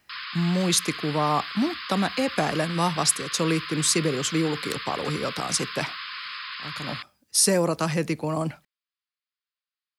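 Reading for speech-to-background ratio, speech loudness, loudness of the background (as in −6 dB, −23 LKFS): 8.5 dB, −25.0 LKFS, −33.5 LKFS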